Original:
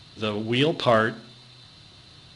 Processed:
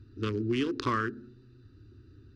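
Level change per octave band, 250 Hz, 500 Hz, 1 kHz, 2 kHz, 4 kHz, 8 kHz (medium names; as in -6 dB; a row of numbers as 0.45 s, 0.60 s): -4.0 dB, -11.0 dB, -7.0 dB, -9.0 dB, -13.0 dB, no reading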